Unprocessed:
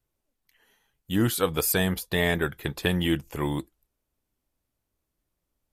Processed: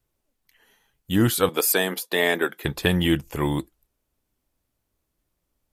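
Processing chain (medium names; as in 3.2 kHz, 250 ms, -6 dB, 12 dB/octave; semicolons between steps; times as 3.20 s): 1.49–2.65 s: high-pass 250 Hz 24 dB/octave; trim +4 dB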